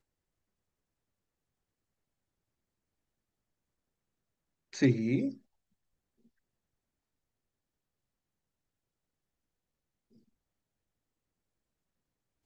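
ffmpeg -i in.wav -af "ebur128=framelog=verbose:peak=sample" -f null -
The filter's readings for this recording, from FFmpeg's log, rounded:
Integrated loudness:
  I:         -30.1 LUFS
  Threshold: -42.2 LUFS
Loudness range:
  LRA:         4.8 LU
  Threshold: -56.6 LUFS
  LRA low:   -40.6 LUFS
  LRA high:  -35.8 LUFS
Sample peak:
  Peak:      -13.3 dBFS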